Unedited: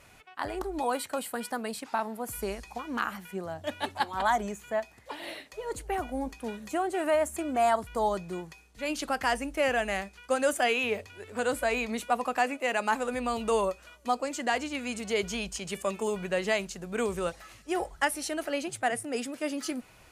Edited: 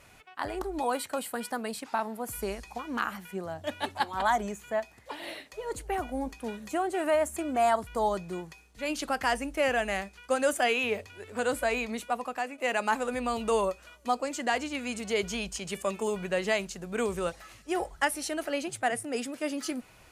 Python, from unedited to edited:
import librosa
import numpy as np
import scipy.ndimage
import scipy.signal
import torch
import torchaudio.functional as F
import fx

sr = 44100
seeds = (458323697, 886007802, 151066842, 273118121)

y = fx.edit(x, sr, fx.fade_out_to(start_s=11.65, length_s=0.93, floor_db=-8.5), tone=tone)